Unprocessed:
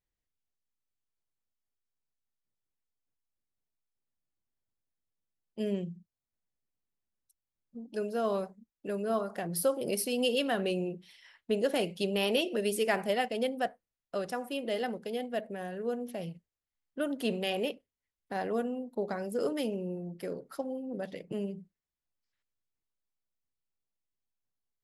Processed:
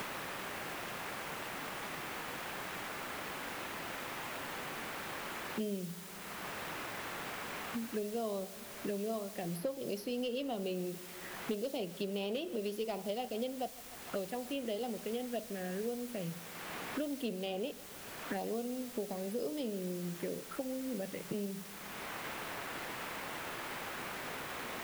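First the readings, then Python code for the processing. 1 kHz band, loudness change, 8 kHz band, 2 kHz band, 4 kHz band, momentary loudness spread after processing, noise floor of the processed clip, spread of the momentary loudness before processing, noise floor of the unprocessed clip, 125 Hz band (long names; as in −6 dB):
−2.5 dB, −6.5 dB, −1.5 dB, −0.5 dB, −4.5 dB, 4 LU, −48 dBFS, 11 LU, below −85 dBFS, −2.5 dB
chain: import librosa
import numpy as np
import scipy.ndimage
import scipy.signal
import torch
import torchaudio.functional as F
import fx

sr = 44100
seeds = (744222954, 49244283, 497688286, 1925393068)

p1 = fx.vibrato(x, sr, rate_hz=7.1, depth_cents=7.4)
p2 = fx.env_phaser(p1, sr, low_hz=570.0, high_hz=1700.0, full_db=-29.0)
p3 = fx.quant_dither(p2, sr, seeds[0], bits=8, dither='triangular')
p4 = np.clip(10.0 ** (22.0 / 20.0) * p3, -1.0, 1.0) / 10.0 ** (22.0 / 20.0)
p5 = p4 + fx.echo_feedback(p4, sr, ms=147, feedback_pct=54, wet_db=-22.0, dry=0)
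p6 = fx.band_squash(p5, sr, depth_pct=100)
y = p6 * librosa.db_to_amplitude(-4.0)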